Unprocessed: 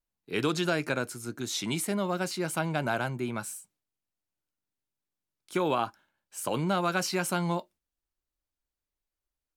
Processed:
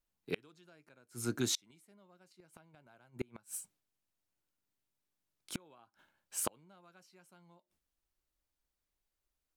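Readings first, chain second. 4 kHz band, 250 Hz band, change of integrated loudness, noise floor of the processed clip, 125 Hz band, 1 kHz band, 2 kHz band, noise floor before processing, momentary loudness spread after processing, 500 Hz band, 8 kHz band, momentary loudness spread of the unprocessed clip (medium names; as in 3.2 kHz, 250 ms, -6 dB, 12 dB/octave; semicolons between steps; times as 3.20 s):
-9.0 dB, -13.5 dB, -9.5 dB, under -85 dBFS, -15.0 dB, -21.5 dB, -18.0 dB, under -85 dBFS, 12 LU, -15.5 dB, -5.0 dB, 9 LU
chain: inverted gate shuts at -23 dBFS, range -35 dB; trim +1.5 dB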